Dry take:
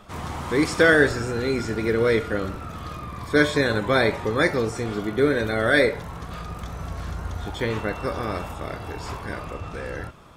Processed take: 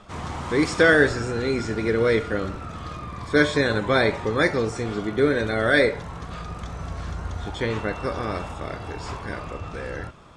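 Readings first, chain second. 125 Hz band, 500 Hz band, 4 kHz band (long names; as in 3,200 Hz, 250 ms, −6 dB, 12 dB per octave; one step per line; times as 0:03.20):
0.0 dB, 0.0 dB, 0.0 dB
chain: low-pass filter 8,900 Hz 24 dB per octave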